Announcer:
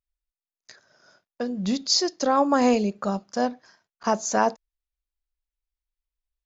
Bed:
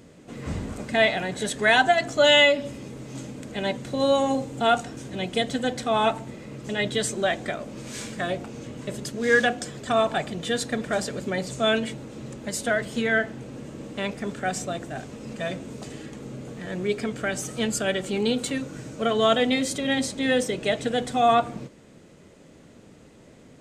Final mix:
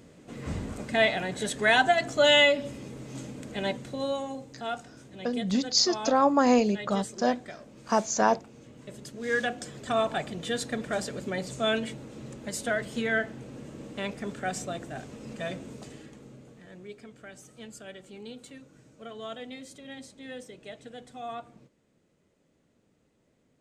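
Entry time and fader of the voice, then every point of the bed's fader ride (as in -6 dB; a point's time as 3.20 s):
3.85 s, -1.5 dB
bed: 3.68 s -3 dB
4.31 s -13 dB
8.67 s -13 dB
9.88 s -4.5 dB
15.66 s -4.5 dB
16.97 s -19 dB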